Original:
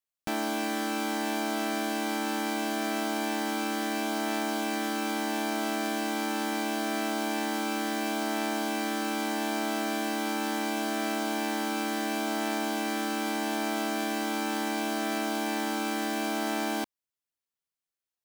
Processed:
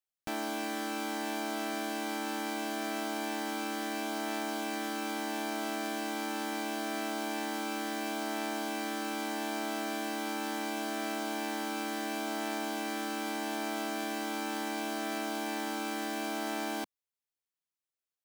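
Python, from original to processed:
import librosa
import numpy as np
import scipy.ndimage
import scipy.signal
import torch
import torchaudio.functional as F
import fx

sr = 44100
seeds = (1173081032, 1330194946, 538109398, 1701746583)

y = fx.peak_eq(x, sr, hz=190.0, db=-4.0, octaves=0.61)
y = y * 10.0 ** (-4.5 / 20.0)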